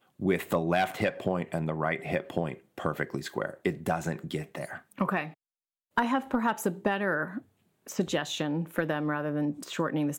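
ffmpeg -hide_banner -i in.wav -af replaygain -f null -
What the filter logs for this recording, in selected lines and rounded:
track_gain = +10.9 dB
track_peak = 0.133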